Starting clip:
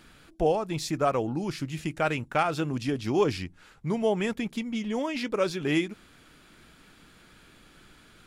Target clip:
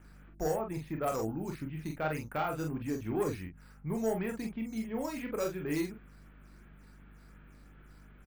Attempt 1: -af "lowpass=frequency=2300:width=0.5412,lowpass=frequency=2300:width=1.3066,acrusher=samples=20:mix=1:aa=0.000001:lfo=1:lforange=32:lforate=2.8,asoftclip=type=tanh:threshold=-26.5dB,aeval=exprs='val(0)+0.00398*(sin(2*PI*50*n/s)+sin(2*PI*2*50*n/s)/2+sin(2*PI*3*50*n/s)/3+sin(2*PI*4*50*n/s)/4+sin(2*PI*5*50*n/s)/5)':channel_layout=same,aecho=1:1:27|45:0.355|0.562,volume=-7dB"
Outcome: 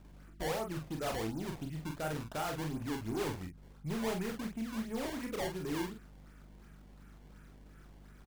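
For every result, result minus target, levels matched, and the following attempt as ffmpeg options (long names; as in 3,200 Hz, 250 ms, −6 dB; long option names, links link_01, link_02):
sample-and-hold swept by an LFO: distortion +15 dB; soft clipping: distortion +8 dB
-af "lowpass=frequency=2300:width=0.5412,lowpass=frequency=2300:width=1.3066,acrusher=samples=4:mix=1:aa=0.000001:lfo=1:lforange=6.4:lforate=2.8,asoftclip=type=tanh:threshold=-26.5dB,aeval=exprs='val(0)+0.00398*(sin(2*PI*50*n/s)+sin(2*PI*2*50*n/s)/2+sin(2*PI*3*50*n/s)/3+sin(2*PI*4*50*n/s)/4+sin(2*PI*5*50*n/s)/5)':channel_layout=same,aecho=1:1:27|45:0.355|0.562,volume=-7dB"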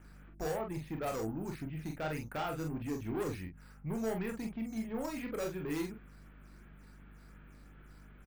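soft clipping: distortion +8 dB
-af "lowpass=frequency=2300:width=0.5412,lowpass=frequency=2300:width=1.3066,acrusher=samples=4:mix=1:aa=0.000001:lfo=1:lforange=6.4:lforate=2.8,asoftclip=type=tanh:threshold=-18.5dB,aeval=exprs='val(0)+0.00398*(sin(2*PI*50*n/s)+sin(2*PI*2*50*n/s)/2+sin(2*PI*3*50*n/s)/3+sin(2*PI*4*50*n/s)/4+sin(2*PI*5*50*n/s)/5)':channel_layout=same,aecho=1:1:27|45:0.355|0.562,volume=-7dB"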